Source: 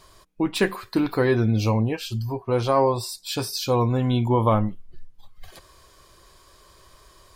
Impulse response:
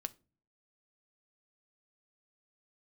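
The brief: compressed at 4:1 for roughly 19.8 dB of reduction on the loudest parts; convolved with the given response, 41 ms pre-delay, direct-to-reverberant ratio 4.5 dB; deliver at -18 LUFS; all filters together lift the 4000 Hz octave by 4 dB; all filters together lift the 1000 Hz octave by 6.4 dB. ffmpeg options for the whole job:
-filter_complex "[0:a]equalizer=f=1k:t=o:g=7,equalizer=f=4k:t=o:g=4.5,acompressor=threshold=-36dB:ratio=4,asplit=2[a][b];[1:a]atrim=start_sample=2205,adelay=41[c];[b][c]afir=irnorm=-1:irlink=0,volume=-2.5dB[d];[a][d]amix=inputs=2:normalize=0,volume=17.5dB"

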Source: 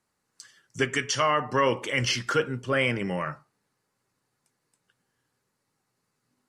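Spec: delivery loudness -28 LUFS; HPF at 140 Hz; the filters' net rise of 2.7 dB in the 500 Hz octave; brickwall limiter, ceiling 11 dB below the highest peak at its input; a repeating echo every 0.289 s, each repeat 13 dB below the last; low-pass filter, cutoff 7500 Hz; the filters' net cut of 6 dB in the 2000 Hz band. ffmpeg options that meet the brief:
-af "highpass=140,lowpass=7.5k,equalizer=f=500:t=o:g=3.5,equalizer=f=2k:t=o:g=-7.5,alimiter=limit=-22.5dB:level=0:latency=1,aecho=1:1:289|578|867:0.224|0.0493|0.0108,volume=4.5dB"

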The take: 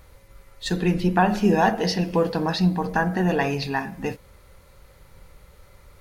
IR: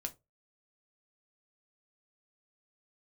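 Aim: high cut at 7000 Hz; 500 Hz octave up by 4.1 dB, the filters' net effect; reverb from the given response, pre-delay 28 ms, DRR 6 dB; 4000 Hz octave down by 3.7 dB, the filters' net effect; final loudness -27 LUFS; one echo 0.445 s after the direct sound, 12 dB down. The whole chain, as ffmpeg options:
-filter_complex "[0:a]lowpass=7k,equalizer=f=500:t=o:g=5,equalizer=f=4k:t=o:g=-4,aecho=1:1:445:0.251,asplit=2[a][b];[1:a]atrim=start_sample=2205,adelay=28[c];[b][c]afir=irnorm=-1:irlink=0,volume=-4.5dB[d];[a][d]amix=inputs=2:normalize=0,volume=-7.5dB"

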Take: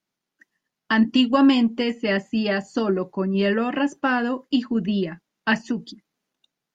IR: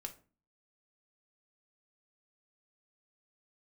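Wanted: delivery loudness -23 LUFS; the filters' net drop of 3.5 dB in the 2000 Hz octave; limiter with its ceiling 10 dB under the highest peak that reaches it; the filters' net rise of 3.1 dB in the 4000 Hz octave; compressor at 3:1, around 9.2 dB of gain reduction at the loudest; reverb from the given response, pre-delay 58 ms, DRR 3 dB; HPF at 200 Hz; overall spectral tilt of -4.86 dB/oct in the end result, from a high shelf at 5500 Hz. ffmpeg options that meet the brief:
-filter_complex "[0:a]highpass=200,equalizer=f=2k:t=o:g=-7,equalizer=f=4k:t=o:g=5.5,highshelf=f=5.5k:g=9,acompressor=threshold=-26dB:ratio=3,alimiter=limit=-24dB:level=0:latency=1,asplit=2[a][b];[1:a]atrim=start_sample=2205,adelay=58[c];[b][c]afir=irnorm=-1:irlink=0,volume=0dB[d];[a][d]amix=inputs=2:normalize=0,volume=8.5dB"

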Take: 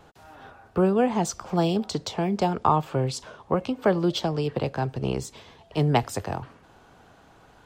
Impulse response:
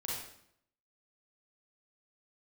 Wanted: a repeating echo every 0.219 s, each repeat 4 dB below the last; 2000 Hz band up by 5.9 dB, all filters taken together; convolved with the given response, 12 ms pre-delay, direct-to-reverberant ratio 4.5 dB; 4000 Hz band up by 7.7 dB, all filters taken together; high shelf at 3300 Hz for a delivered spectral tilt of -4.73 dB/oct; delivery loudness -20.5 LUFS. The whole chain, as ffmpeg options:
-filter_complex "[0:a]equalizer=f=2k:t=o:g=5,highshelf=f=3.3k:g=4.5,equalizer=f=4k:t=o:g=5,aecho=1:1:219|438|657|876|1095|1314|1533|1752|1971:0.631|0.398|0.25|0.158|0.0994|0.0626|0.0394|0.0249|0.0157,asplit=2[a][b];[1:a]atrim=start_sample=2205,adelay=12[c];[b][c]afir=irnorm=-1:irlink=0,volume=-6.5dB[d];[a][d]amix=inputs=2:normalize=0,volume=1dB"

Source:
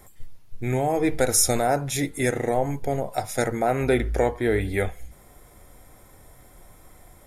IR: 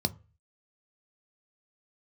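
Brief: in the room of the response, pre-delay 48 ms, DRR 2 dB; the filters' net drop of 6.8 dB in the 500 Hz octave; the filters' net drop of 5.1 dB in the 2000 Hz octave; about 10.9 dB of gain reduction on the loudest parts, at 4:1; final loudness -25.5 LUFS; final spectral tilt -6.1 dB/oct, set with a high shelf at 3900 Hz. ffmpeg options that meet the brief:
-filter_complex "[0:a]equalizer=f=500:t=o:g=-8.5,equalizer=f=2k:t=o:g=-5,highshelf=f=3.9k:g=-3,acompressor=threshold=-31dB:ratio=4,asplit=2[a][b];[1:a]atrim=start_sample=2205,adelay=48[c];[b][c]afir=irnorm=-1:irlink=0,volume=-7.5dB[d];[a][d]amix=inputs=2:normalize=0,volume=3.5dB"

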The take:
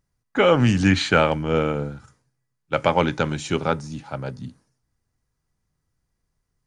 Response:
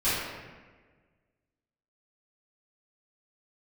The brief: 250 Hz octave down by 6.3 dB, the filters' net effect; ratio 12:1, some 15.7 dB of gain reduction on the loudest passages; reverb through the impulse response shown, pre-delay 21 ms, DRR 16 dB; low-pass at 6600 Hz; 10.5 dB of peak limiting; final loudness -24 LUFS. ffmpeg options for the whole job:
-filter_complex "[0:a]lowpass=6.6k,equalizer=f=250:t=o:g=-9,acompressor=threshold=-29dB:ratio=12,alimiter=limit=-22dB:level=0:latency=1,asplit=2[a][b];[1:a]atrim=start_sample=2205,adelay=21[c];[b][c]afir=irnorm=-1:irlink=0,volume=-29dB[d];[a][d]amix=inputs=2:normalize=0,volume=12.5dB"

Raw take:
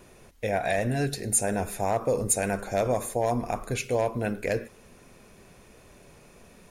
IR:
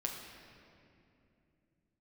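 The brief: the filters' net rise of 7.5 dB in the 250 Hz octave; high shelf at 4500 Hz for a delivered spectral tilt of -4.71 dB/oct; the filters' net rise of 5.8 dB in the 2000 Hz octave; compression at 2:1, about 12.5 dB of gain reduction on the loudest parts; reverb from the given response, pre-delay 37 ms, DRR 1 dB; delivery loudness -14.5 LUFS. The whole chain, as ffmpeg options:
-filter_complex "[0:a]equalizer=f=250:t=o:g=9,equalizer=f=2k:t=o:g=6.5,highshelf=f=4.5k:g=4,acompressor=threshold=-41dB:ratio=2,asplit=2[a][b];[1:a]atrim=start_sample=2205,adelay=37[c];[b][c]afir=irnorm=-1:irlink=0,volume=-2.5dB[d];[a][d]amix=inputs=2:normalize=0,volume=18.5dB"

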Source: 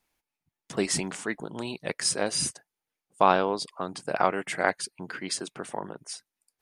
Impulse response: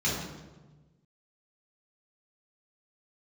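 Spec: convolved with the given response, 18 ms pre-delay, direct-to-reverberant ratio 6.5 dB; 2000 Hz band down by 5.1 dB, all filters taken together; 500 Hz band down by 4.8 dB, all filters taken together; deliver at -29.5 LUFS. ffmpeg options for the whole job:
-filter_complex "[0:a]equalizer=f=500:t=o:g=-6,equalizer=f=2k:t=o:g=-6.5,asplit=2[a][b];[1:a]atrim=start_sample=2205,adelay=18[c];[b][c]afir=irnorm=-1:irlink=0,volume=-17dB[d];[a][d]amix=inputs=2:normalize=0,volume=0.5dB"

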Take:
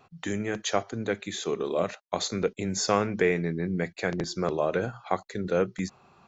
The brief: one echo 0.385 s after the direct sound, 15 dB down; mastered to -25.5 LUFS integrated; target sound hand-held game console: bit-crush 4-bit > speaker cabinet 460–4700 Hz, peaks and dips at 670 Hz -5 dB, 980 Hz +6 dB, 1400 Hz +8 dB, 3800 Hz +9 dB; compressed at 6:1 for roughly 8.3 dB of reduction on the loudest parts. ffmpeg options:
-af "acompressor=threshold=-28dB:ratio=6,aecho=1:1:385:0.178,acrusher=bits=3:mix=0:aa=0.000001,highpass=460,equalizer=f=670:t=q:w=4:g=-5,equalizer=f=980:t=q:w=4:g=6,equalizer=f=1.4k:t=q:w=4:g=8,equalizer=f=3.8k:t=q:w=4:g=9,lowpass=f=4.7k:w=0.5412,lowpass=f=4.7k:w=1.3066,volume=9dB"

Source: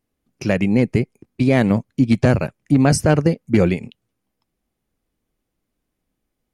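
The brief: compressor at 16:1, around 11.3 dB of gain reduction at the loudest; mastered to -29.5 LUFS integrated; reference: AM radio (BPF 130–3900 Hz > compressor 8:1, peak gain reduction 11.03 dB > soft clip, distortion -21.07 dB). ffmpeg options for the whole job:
-af "acompressor=threshold=-21dB:ratio=16,highpass=130,lowpass=3.9k,acompressor=threshold=-30dB:ratio=8,asoftclip=threshold=-23dB,volume=8dB"

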